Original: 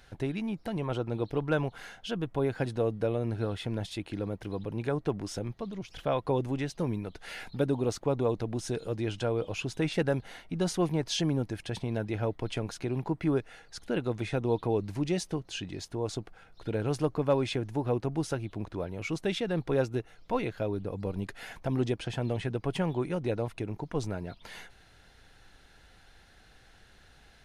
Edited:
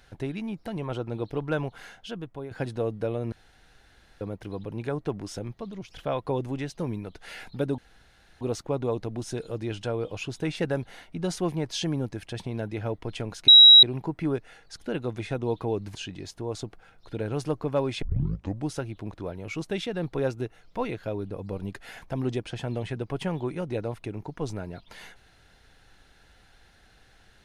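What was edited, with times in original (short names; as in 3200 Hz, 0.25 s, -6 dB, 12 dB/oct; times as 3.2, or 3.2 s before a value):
1.9–2.51 fade out, to -12 dB
3.32–4.21 room tone
7.78 insert room tone 0.63 s
12.85 add tone 3860 Hz -8 dBFS 0.35 s
14.97–15.49 cut
17.56 tape start 0.67 s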